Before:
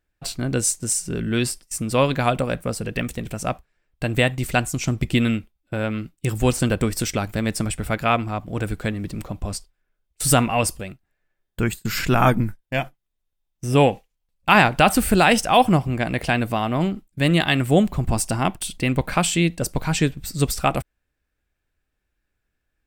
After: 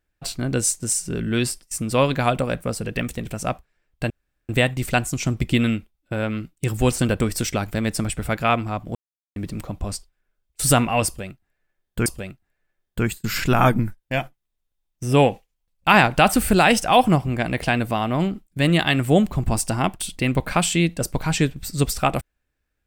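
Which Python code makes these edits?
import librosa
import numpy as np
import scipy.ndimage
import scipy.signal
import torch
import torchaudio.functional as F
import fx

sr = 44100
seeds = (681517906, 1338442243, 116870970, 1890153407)

y = fx.edit(x, sr, fx.insert_room_tone(at_s=4.1, length_s=0.39),
    fx.silence(start_s=8.56, length_s=0.41),
    fx.repeat(start_s=10.67, length_s=1.0, count=2), tone=tone)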